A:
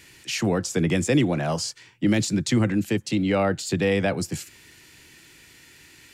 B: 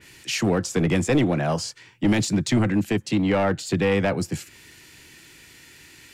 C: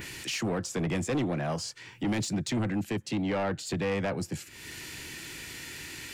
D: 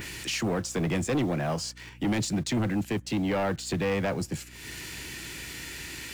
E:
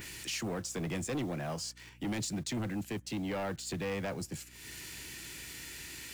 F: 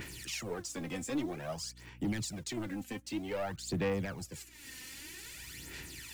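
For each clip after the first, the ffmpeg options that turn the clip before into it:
-af "acontrast=30,aeval=exprs='clip(val(0),-1,0.188)':c=same,adynamicequalizer=threshold=0.0112:dfrequency=3300:dqfactor=0.7:tfrequency=3300:tqfactor=0.7:attack=5:release=100:ratio=0.375:range=2.5:mode=cutabove:tftype=highshelf,volume=0.708"
-af "acompressor=mode=upward:threshold=0.0708:ratio=2.5,asoftclip=type=tanh:threshold=0.133,volume=0.501"
-filter_complex "[0:a]asplit=2[s0][s1];[s1]acrusher=bits=6:mix=0:aa=0.000001,volume=0.282[s2];[s0][s2]amix=inputs=2:normalize=0,aeval=exprs='val(0)+0.00316*(sin(2*PI*60*n/s)+sin(2*PI*2*60*n/s)/2+sin(2*PI*3*60*n/s)/3+sin(2*PI*4*60*n/s)/4+sin(2*PI*5*60*n/s)/5)':c=same"
-af "highshelf=f=4900:g=6.5,volume=0.376"
-af "aphaser=in_gain=1:out_gain=1:delay=3.9:decay=0.62:speed=0.52:type=sinusoidal,volume=0.631"

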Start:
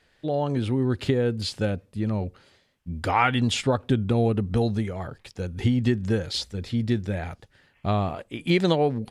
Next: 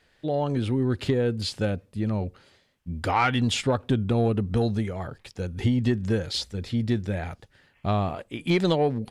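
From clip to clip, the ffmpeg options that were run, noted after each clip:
-af "asoftclip=type=tanh:threshold=0.266"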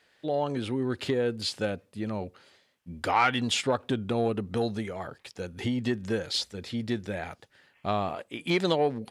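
-af "highpass=f=350:p=1"

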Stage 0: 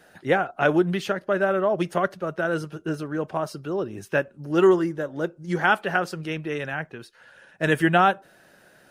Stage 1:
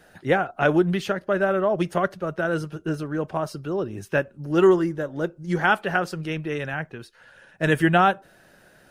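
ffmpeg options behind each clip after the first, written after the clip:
-af "lowshelf=f=88:g=11.5"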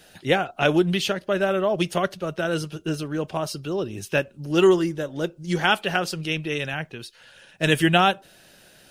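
-af "highshelf=f=2200:t=q:w=1.5:g=8"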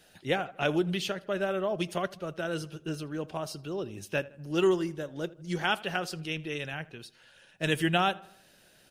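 -filter_complex "[0:a]asplit=2[s0][s1];[s1]adelay=80,lowpass=f=2800:p=1,volume=0.0944,asplit=2[s2][s3];[s3]adelay=80,lowpass=f=2800:p=1,volume=0.52,asplit=2[s4][s5];[s5]adelay=80,lowpass=f=2800:p=1,volume=0.52,asplit=2[s6][s7];[s7]adelay=80,lowpass=f=2800:p=1,volume=0.52[s8];[s0][s2][s4][s6][s8]amix=inputs=5:normalize=0,volume=0.398"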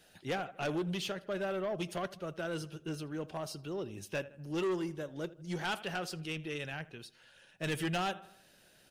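-af "asoftclip=type=tanh:threshold=0.0501,volume=0.708"

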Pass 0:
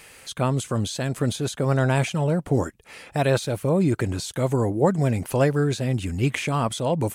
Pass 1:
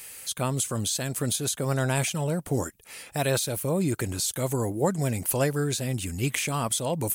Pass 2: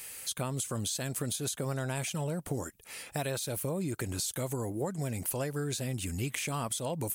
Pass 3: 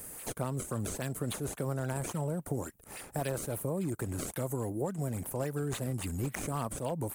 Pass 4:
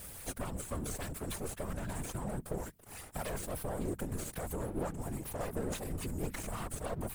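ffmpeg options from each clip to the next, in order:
-af "aemphasis=mode=production:type=75fm,volume=0.596"
-af "acompressor=threshold=0.0355:ratio=6,volume=0.841"
-filter_complex "[0:a]acrossover=split=260|1700|6200[s0][s1][s2][s3];[s2]acrusher=samples=29:mix=1:aa=0.000001:lfo=1:lforange=46.4:lforate=3.6[s4];[s3]alimiter=level_in=2.24:limit=0.0631:level=0:latency=1:release=85,volume=0.447[s5];[s0][s1][s4][s5]amix=inputs=4:normalize=0"
-af "aeval=exprs='max(val(0),0)':c=same,bandreject=f=50:t=h:w=6,bandreject=f=100:t=h:w=6,bandreject=f=150:t=h:w=6,afftfilt=real='hypot(re,im)*cos(2*PI*random(0))':imag='hypot(re,im)*sin(2*PI*random(1))':win_size=512:overlap=0.75,volume=2.37"

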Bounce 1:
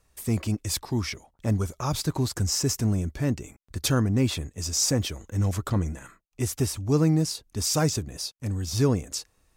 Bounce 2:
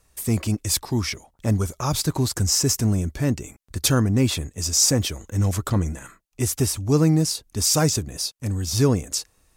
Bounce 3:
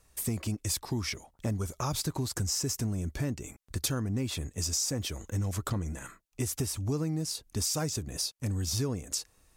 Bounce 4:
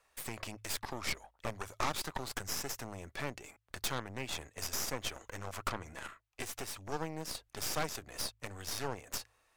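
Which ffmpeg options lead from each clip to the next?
-af "equalizer=f=11000:t=o:w=1.7:g=4.5,volume=1.5"
-af "acompressor=threshold=0.0501:ratio=6,volume=0.75"
-filter_complex "[0:a]acrossover=split=500 3500:gain=0.1 1 0.251[s0][s1][s2];[s0][s1][s2]amix=inputs=3:normalize=0,aeval=exprs='0.0794*(cos(1*acos(clip(val(0)/0.0794,-1,1)))-cos(1*PI/2))+0.0178*(cos(8*acos(clip(val(0)/0.0794,-1,1)))-cos(8*PI/2))':c=same,bandreject=f=53.69:t=h:w=4,bandreject=f=107.38:t=h:w=4,volume=1.12"

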